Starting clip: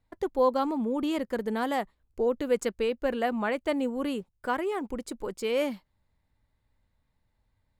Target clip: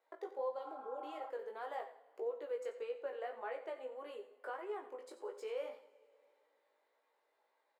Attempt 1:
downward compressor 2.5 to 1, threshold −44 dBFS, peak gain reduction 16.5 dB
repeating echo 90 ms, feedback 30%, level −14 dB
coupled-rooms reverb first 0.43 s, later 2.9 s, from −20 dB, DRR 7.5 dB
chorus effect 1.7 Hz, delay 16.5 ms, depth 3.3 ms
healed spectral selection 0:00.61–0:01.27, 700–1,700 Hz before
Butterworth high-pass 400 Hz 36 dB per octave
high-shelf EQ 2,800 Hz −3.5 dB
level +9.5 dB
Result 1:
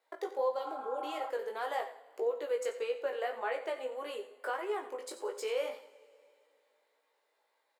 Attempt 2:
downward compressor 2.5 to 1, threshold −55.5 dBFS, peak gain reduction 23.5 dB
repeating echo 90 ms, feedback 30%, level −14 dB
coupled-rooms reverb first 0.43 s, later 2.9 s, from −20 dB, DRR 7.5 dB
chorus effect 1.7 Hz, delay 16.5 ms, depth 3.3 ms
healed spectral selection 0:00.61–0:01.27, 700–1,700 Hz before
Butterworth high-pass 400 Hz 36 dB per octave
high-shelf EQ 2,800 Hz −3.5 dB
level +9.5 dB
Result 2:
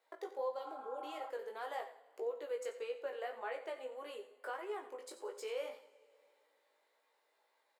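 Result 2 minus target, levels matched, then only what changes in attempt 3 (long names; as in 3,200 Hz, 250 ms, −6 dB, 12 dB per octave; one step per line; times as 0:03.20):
4,000 Hz band +5.5 dB
change: high-shelf EQ 2,800 Hz −14.5 dB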